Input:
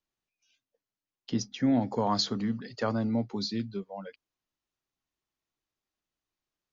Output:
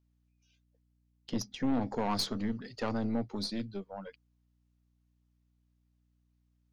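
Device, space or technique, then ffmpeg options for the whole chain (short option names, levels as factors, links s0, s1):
valve amplifier with mains hum: -af "aeval=exprs='(tanh(17.8*val(0)+0.6)-tanh(0.6))/17.8':c=same,aeval=exprs='val(0)+0.000282*(sin(2*PI*60*n/s)+sin(2*PI*2*60*n/s)/2+sin(2*PI*3*60*n/s)/3+sin(2*PI*4*60*n/s)/4+sin(2*PI*5*60*n/s)/5)':c=same"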